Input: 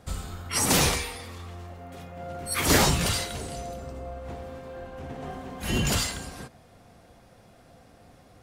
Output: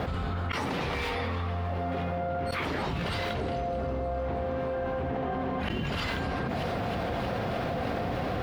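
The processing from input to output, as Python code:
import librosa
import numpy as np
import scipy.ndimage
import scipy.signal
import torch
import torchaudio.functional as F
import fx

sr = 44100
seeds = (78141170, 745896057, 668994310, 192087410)

p1 = scipy.signal.sosfilt(scipy.signal.butter(2, 44.0, 'highpass', fs=sr, output='sos'), x)
p2 = fx.low_shelf(p1, sr, hz=170.0, db=-3.5)
p3 = fx.hum_notches(p2, sr, base_hz=50, count=7)
p4 = fx.gate_flip(p3, sr, shuts_db=-23.0, range_db=-24)
p5 = fx.quant_dither(p4, sr, seeds[0], bits=8, dither='triangular')
p6 = p4 + (p5 * librosa.db_to_amplitude(-10.0))
p7 = fx.air_absorb(p6, sr, metres=370.0)
p8 = p7 + fx.echo_wet_highpass(p7, sr, ms=314, feedback_pct=74, hz=3600.0, wet_db=-12.5, dry=0)
p9 = fx.env_flatten(p8, sr, amount_pct=100)
y = p9 * librosa.db_to_amplitude(1.0)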